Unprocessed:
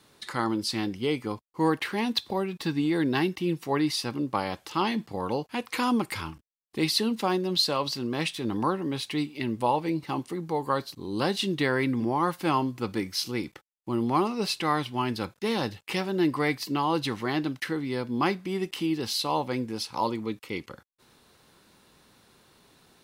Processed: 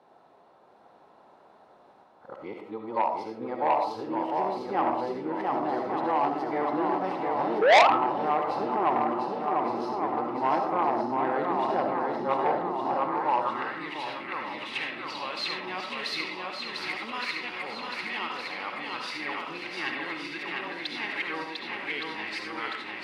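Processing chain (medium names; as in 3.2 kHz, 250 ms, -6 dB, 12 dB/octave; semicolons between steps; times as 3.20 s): reverse the whole clip; on a send: shuffle delay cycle 1165 ms, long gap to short 1.5:1, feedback 56%, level -3.5 dB; on the sum: painted sound rise, 7.61–7.88 s, 410–1400 Hz -16 dBFS; tilt shelf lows +3.5 dB; algorithmic reverb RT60 0.43 s, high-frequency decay 0.7×, pre-delay 30 ms, DRR 3 dB; in parallel at -1 dB: compression, threshold -36 dBFS, peak gain reduction 23.5 dB; on the sum: band-pass sweep 770 Hz -> 2.2 kHz, 12.88–14.15 s; transformer saturation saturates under 2.4 kHz; trim +3 dB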